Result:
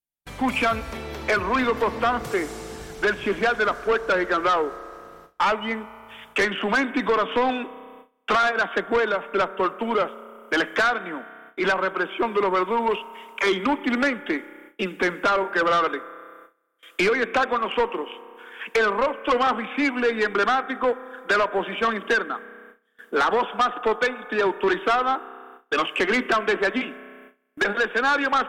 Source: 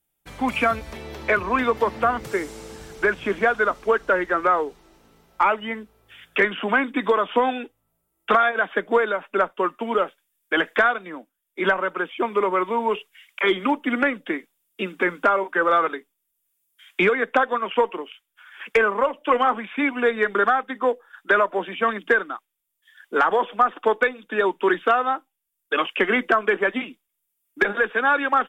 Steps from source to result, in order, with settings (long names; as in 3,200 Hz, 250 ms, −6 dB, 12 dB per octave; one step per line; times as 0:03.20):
spring reverb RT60 2.7 s, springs 31 ms, chirp 70 ms, DRR 18 dB
soft clipping −18 dBFS, distortion −11 dB
noise gate with hold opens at −38 dBFS
level +2.5 dB